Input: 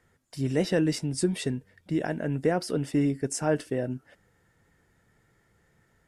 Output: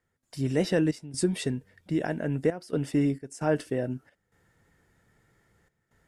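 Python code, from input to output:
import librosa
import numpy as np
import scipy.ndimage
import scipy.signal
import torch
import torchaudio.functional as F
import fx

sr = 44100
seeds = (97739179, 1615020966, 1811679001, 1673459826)

y = fx.step_gate(x, sr, bpm=66, pattern='.xxx.xxxxxx.xx', floor_db=-12.0, edge_ms=4.5)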